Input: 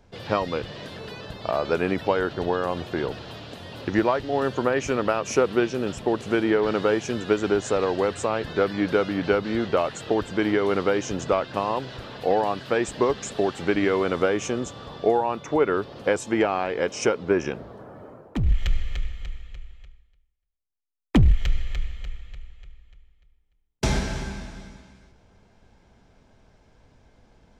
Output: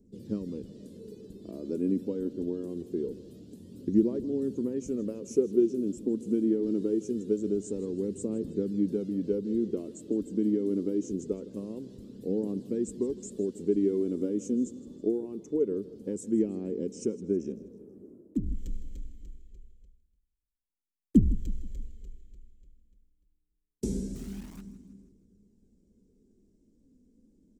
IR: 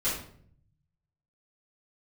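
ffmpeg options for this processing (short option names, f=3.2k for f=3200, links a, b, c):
-filter_complex "[0:a]firequalizer=gain_entry='entry(140,0);entry(200,15);entry(420,7);entry(700,-20);entry(1400,-24);entry(7600,7)':delay=0.05:min_phase=1,asplit=3[a][b][c];[a]afade=t=out:st=24.14:d=0.02[d];[b]acrusher=bits=7:dc=4:mix=0:aa=0.000001,afade=t=in:st=24.14:d=0.02,afade=t=out:st=24.6:d=0.02[e];[c]afade=t=in:st=24.6:d=0.02[f];[d][e][f]amix=inputs=3:normalize=0,flanger=delay=0:depth=4.1:regen=52:speed=0.24:shape=triangular,asplit=2[g][h];[h]aecho=0:1:160|320|480|640:0.126|0.0567|0.0255|0.0115[i];[g][i]amix=inputs=2:normalize=0,volume=-9dB"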